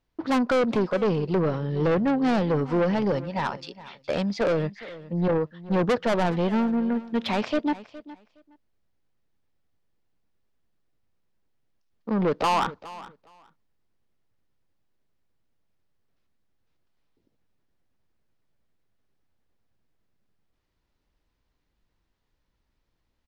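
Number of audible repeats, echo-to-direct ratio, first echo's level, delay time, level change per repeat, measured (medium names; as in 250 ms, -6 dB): 2, -17.5 dB, -17.5 dB, 415 ms, -15.5 dB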